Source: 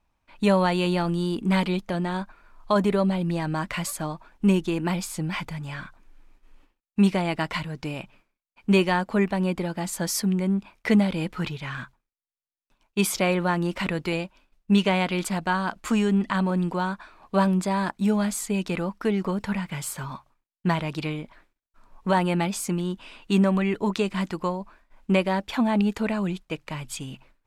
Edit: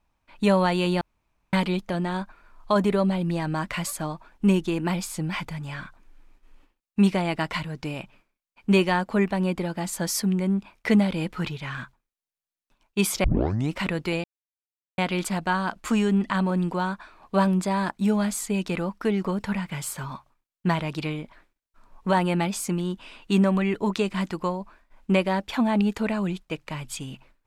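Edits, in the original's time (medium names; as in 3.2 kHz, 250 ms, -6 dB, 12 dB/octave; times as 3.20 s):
1.01–1.53 s: room tone
13.24 s: tape start 0.50 s
14.24–14.98 s: mute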